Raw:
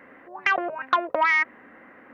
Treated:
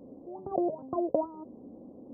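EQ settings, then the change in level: Gaussian low-pass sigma 17 samples; +8.0 dB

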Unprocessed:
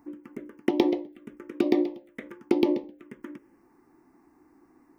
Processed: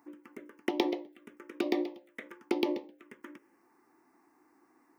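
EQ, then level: high-pass 750 Hz 6 dB/octave; 0.0 dB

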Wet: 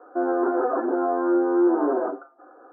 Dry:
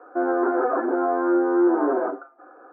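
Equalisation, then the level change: low-pass 1.6 kHz 12 dB/octave; distance through air 270 m; 0.0 dB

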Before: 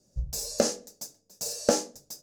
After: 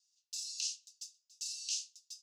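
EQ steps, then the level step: Chebyshev high-pass 2.7 kHz, order 6; distance through air 100 m; +1.0 dB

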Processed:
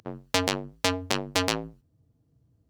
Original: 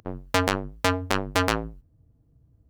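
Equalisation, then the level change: high-pass 98 Hz 12 dB/octave; peaking EQ 4.9 kHz +6.5 dB 2 oct; dynamic bell 1.4 kHz, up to -7 dB, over -37 dBFS, Q 1.7; -2.5 dB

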